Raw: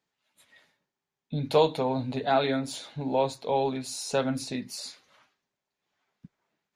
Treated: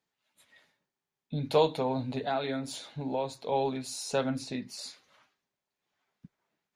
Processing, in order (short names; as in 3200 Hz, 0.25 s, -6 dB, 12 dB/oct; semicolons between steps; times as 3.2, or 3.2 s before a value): 2.22–3.52 compressor 2:1, threshold -28 dBFS, peak gain reduction 6 dB; 4.3–4.79 high shelf 9000 Hz -10 dB; gain -2.5 dB